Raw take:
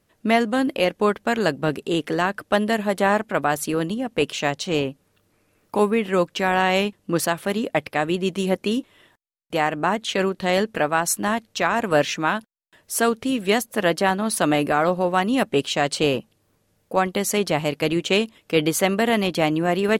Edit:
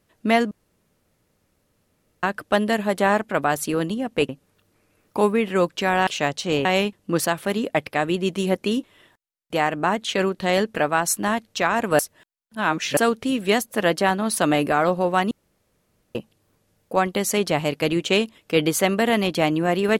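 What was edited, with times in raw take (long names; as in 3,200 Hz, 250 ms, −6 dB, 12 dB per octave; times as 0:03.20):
0:00.51–0:02.23: fill with room tone
0:04.29–0:04.87: move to 0:06.65
0:11.99–0:12.97: reverse
0:15.31–0:16.15: fill with room tone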